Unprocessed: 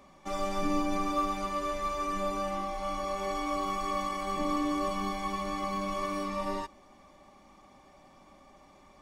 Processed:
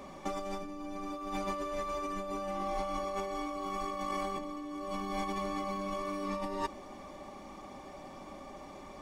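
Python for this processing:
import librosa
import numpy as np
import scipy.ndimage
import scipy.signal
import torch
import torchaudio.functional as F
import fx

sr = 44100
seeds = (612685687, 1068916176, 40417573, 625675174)

y = fx.peak_eq(x, sr, hz=400.0, db=5.0, octaves=1.7)
y = fx.over_compress(y, sr, threshold_db=-37.0, ratio=-1.0)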